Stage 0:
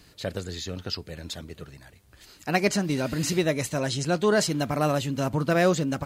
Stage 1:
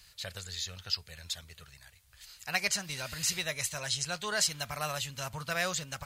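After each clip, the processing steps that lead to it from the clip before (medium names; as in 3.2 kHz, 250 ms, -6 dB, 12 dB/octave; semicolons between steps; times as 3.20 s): amplifier tone stack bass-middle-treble 10-0-10; trim +1.5 dB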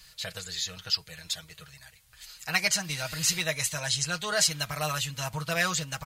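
comb 6.3 ms, depth 70%; trim +3 dB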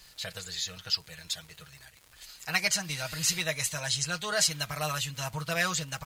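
crackle 210 per s -40 dBFS; trim -1.5 dB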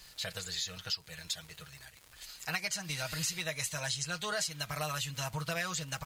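compression 5:1, threshold -32 dBFS, peak gain reduction 11 dB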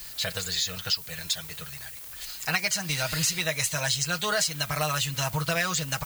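added noise violet -51 dBFS; trim +8.5 dB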